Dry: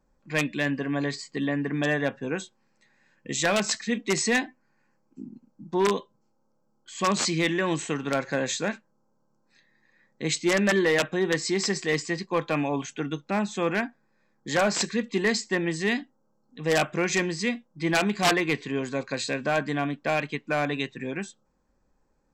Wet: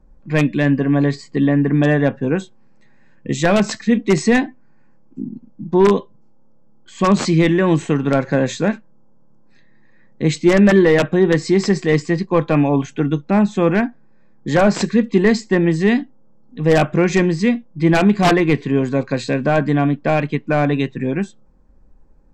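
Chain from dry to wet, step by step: tilt -3 dB/oct; gain +7 dB

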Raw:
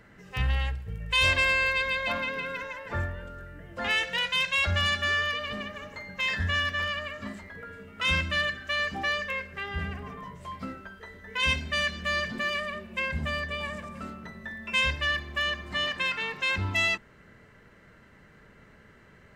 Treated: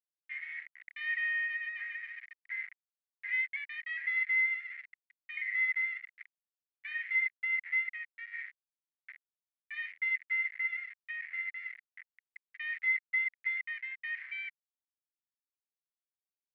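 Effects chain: bit-crush 5-bit; varispeed +17%; Butterworth band-pass 2000 Hz, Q 5.4

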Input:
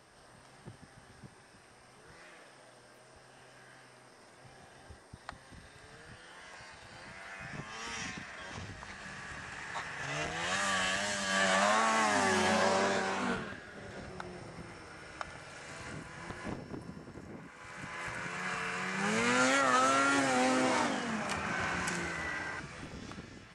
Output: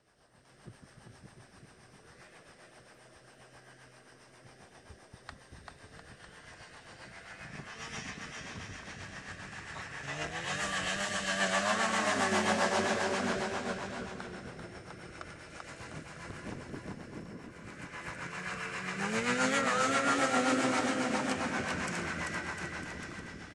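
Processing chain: bouncing-ball echo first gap 0.39 s, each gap 0.8×, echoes 5; rotary speaker horn 7.5 Hz; AGC gain up to 6.5 dB; gain -6.5 dB

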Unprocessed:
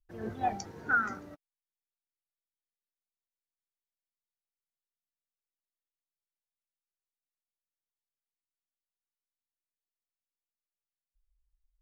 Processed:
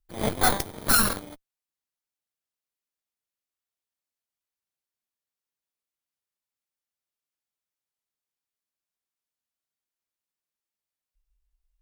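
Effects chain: FFT order left unsorted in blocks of 16 samples; added harmonics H 3 -18 dB, 8 -7 dB, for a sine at -16.5 dBFS; gain +7.5 dB

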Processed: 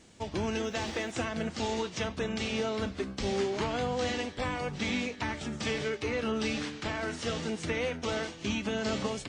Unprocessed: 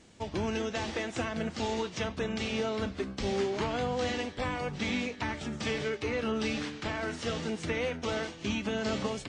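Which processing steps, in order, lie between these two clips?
high shelf 6400 Hz +4.5 dB; 0.64–1.12 requantised 12-bit, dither triangular

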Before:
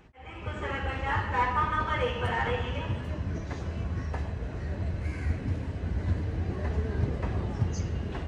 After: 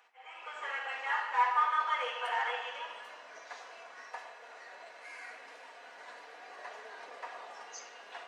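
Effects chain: HPF 680 Hz 24 dB/oct; shoebox room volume 3500 m³, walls furnished, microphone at 1.8 m; gain -3 dB

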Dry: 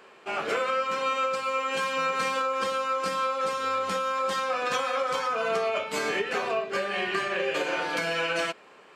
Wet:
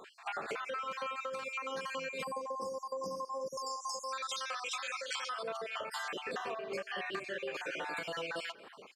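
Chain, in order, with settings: random spectral dropouts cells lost 45%; 3.57–5.43 weighting filter ITU-R 468; 2.24–4.13 spectral delete 1100–4700 Hz; compressor 8:1, threshold -39 dBFS, peak gain reduction 16 dB; speakerphone echo 0.24 s, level -20 dB; gain +2.5 dB

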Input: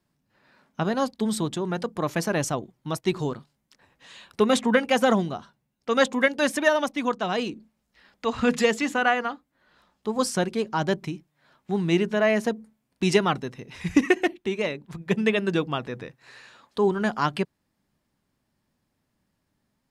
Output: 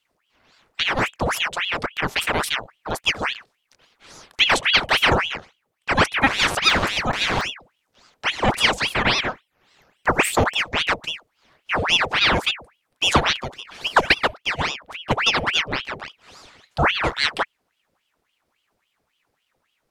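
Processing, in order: 6.27–7.41 GSM buzz -29 dBFS; 9.1–10.57 ripple EQ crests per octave 0.82, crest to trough 15 dB; ring modulator with a swept carrier 1700 Hz, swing 85%, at 3.6 Hz; gain +5.5 dB

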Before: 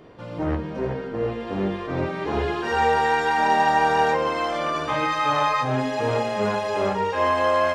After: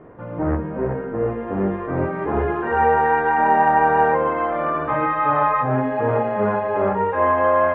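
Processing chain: LPF 1800 Hz 24 dB/oct; gain +3.5 dB

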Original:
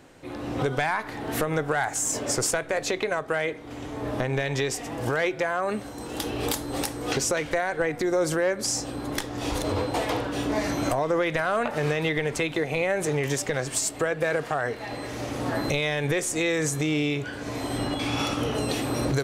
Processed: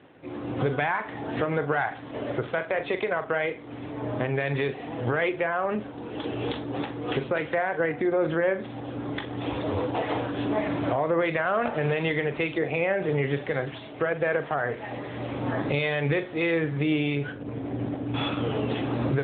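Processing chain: 17.32–18.14 median filter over 41 samples; flutter echo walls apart 7.2 m, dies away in 0.25 s; AMR-NB 10.2 kbps 8000 Hz

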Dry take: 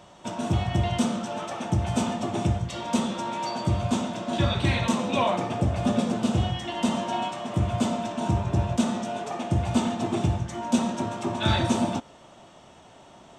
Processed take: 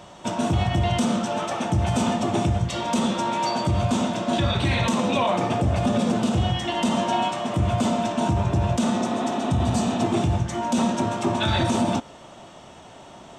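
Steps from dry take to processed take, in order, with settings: spectral repair 9.03–9.95, 230–4000 Hz; limiter -19 dBFS, peak gain reduction 9 dB; gain +6 dB

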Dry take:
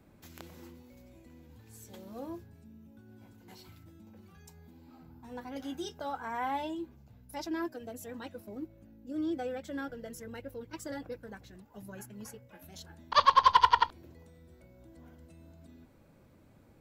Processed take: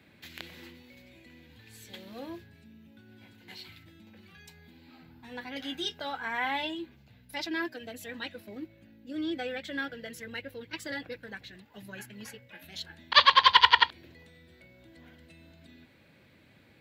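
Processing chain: HPF 82 Hz; band shelf 2700 Hz +13 dB

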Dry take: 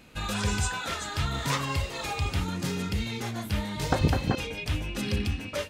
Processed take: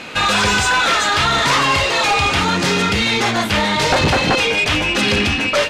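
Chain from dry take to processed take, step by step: overdrive pedal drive 29 dB, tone 6600 Hz, clips at -8.5 dBFS; in parallel at -3 dB: one-sided clip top -21.5 dBFS; on the sum: air absorption 53 m; gain -1 dB

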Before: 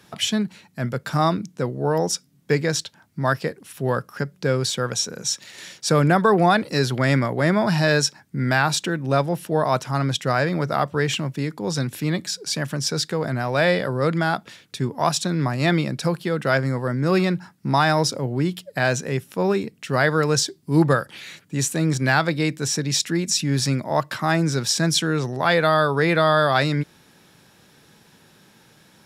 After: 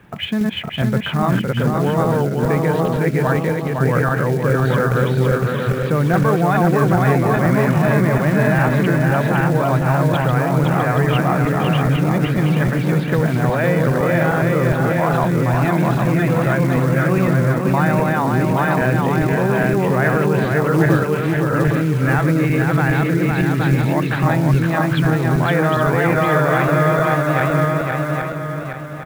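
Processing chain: regenerating reverse delay 0.409 s, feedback 57%, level -1 dB; inverse Chebyshev low-pass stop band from 5200 Hz, stop band 40 dB; low shelf 120 Hz +10 dB; in parallel at -1 dB: negative-ratio compressor -21 dBFS, ratio -0.5; on the sum: companded quantiser 6-bit; on a send: echo 0.511 s -4 dB; on the sum: gain -3.5 dB

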